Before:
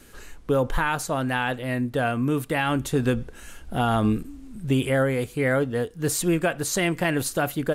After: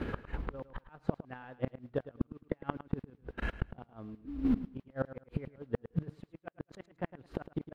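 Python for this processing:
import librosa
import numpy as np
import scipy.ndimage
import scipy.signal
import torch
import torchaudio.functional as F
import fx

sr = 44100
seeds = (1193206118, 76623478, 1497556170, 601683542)

y = scipy.signal.sosfilt(scipy.signal.butter(2, 43.0, 'highpass', fs=sr, output='sos'), x)
y = fx.high_shelf(y, sr, hz=2400.0, db=-9.0)
y = fx.level_steps(y, sr, step_db=24, at=(2.16, 4.45))
y = fx.transient(y, sr, attack_db=10, sustain_db=-8)
y = fx.over_compress(y, sr, threshold_db=-22.0, ratio=-0.5)
y = fx.gate_flip(y, sr, shuts_db=-15.0, range_db=-37)
y = fx.mod_noise(y, sr, seeds[0], snr_db=19)
y = fx.gate_flip(y, sr, shuts_db=-31.0, range_db=-29)
y = fx.air_absorb(y, sr, metres=380.0)
y = fx.echo_feedback(y, sr, ms=107, feedback_pct=20, wet_db=-14.5)
y = y * librosa.db_to_amplitude(13.5)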